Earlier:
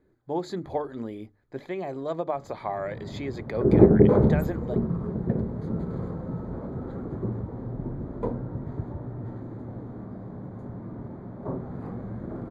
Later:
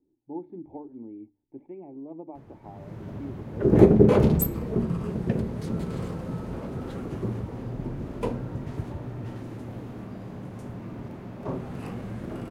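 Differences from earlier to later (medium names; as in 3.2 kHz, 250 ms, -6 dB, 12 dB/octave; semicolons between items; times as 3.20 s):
speech: add cascade formant filter u; master: remove boxcar filter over 16 samples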